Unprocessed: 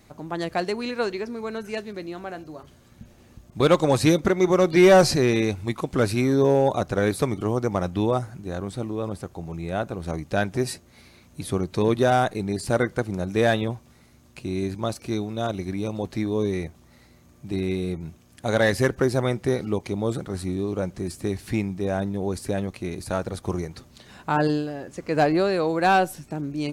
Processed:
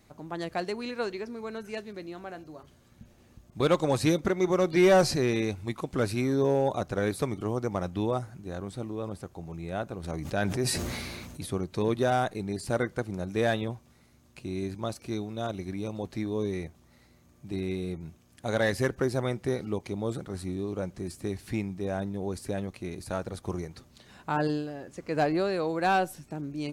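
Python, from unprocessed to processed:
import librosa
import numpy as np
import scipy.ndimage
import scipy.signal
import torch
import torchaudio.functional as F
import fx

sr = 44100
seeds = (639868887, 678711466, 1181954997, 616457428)

y = fx.sustainer(x, sr, db_per_s=26.0, at=(10.03, 11.45), fade=0.02)
y = y * librosa.db_to_amplitude(-6.0)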